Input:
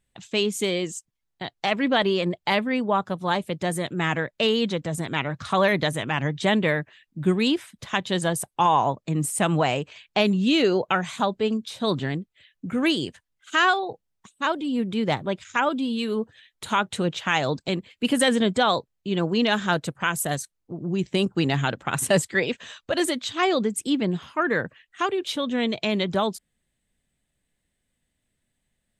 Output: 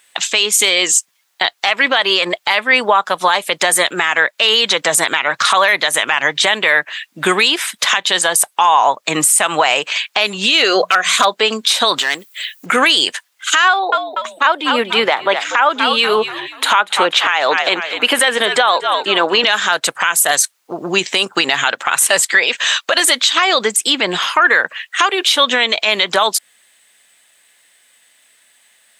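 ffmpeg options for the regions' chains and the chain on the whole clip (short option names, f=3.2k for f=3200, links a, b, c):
-filter_complex "[0:a]asettb=1/sr,asplit=3[a][b][c];[a]atrim=end=10.664[d];[b]atrim=start=10.66:end=11.32,asetpts=PTS-STARTPTS,afade=t=in:d=0.004:c=qsin,afade=t=out:st=0.656:d=0.004:c=qsin,bandreject=f=60:t=h:w=6,bandreject=f=120:t=h:w=6,bandreject=f=180:t=h:w=6,aeval=exprs='0.282*(abs(mod(val(0)/0.282+3,4)-2)-1)':c=same,asuperstop=centerf=880:order=8:qfactor=5.2[e];[c]atrim=start=11.316[f];[d][e]acrossfade=d=0.004:c1=hsin:c2=qsin[g];[g][f]acrossfade=d=0.004:c1=qsin:c2=hsin,asettb=1/sr,asplit=3[h][i][j];[h]atrim=end=11.984[k];[i]atrim=start=11.98:end=12.66,asetpts=PTS-STARTPTS,afade=t=in:d=0.004:c=qsin,afade=t=out:st=0.676:d=0.004:c=qsin,aemphasis=mode=production:type=bsi,acompressor=threshold=-34dB:ratio=5:attack=3.2:release=140:knee=1:detection=peak,aeval=exprs='clip(val(0),-1,0.0266)':c=same[l];[j]atrim=start=12.656[m];[k][l]acrossfade=d=0.004:c1=hsin:c2=qsin[n];[n][m]acrossfade=d=0.004:c1=qsin:c2=hsin,asettb=1/sr,asplit=3[o][p][q];[o]atrim=end=13.684[r];[p]atrim=start=13.68:end=19.44,asetpts=PTS-STARTPTS,afade=t=in:d=0.004:c=qsin,afade=t=out:st=5.756:d=0.004:c=qsin,highpass=240,equalizer=f=7.7k:t=o:w=2:g=-12,asplit=5[s][t][u][v][w];[t]adelay=241,afreqshift=-78,volume=-15dB[x];[u]adelay=482,afreqshift=-156,volume=-23.2dB[y];[v]adelay=723,afreqshift=-234,volume=-31.4dB[z];[w]adelay=964,afreqshift=-312,volume=-39.5dB[aa];[s][x][y][z][aa]amix=inputs=5:normalize=0,atrim=end_sample=254016[ab];[q]atrim=start=19.436[ac];[r][ab]acrossfade=d=0.004:c1=hsin:c2=qsin[ad];[ad][ac]acrossfade=d=0.004:c1=qsin:c2=hsin,highpass=990,acompressor=threshold=-35dB:ratio=4,alimiter=level_in=29dB:limit=-1dB:release=50:level=0:latency=1,volume=-1dB"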